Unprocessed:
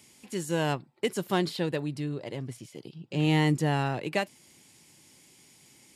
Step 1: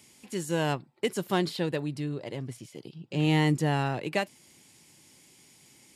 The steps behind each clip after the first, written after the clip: nothing audible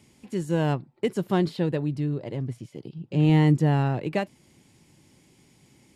tilt -2.5 dB/oct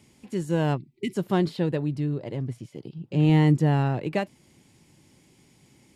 spectral gain 0.77–1.14, 420–1900 Hz -25 dB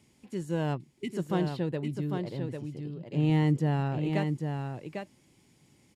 echo 0.799 s -5.5 dB; gain -6 dB

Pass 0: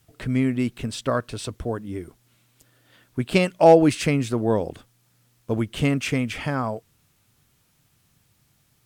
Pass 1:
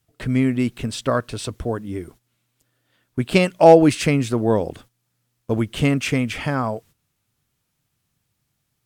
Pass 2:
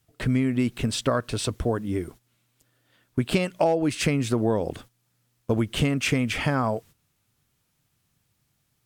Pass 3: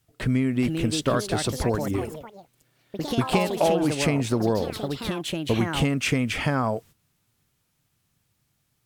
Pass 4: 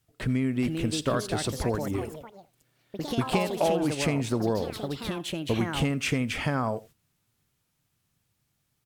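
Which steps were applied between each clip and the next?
gate -48 dBFS, range -12 dB; gain +3 dB
compressor 12:1, threshold -20 dBFS, peak gain reduction 15.5 dB; gain +1.5 dB
echoes that change speed 0.469 s, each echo +4 st, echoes 3, each echo -6 dB
echo 84 ms -20.5 dB; gain -3.5 dB

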